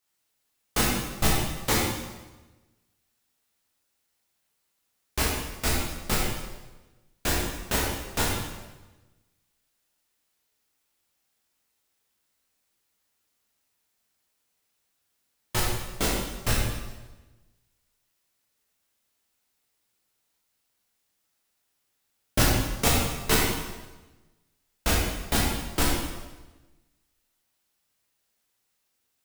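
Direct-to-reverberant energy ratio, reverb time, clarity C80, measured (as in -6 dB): -4.5 dB, 1.2 s, 2.5 dB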